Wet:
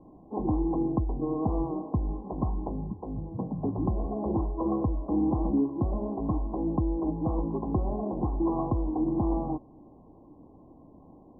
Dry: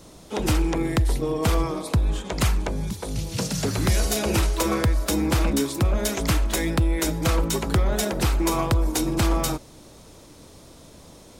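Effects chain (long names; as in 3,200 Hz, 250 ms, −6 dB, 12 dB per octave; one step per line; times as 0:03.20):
Chebyshev low-pass with heavy ripple 1,100 Hz, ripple 9 dB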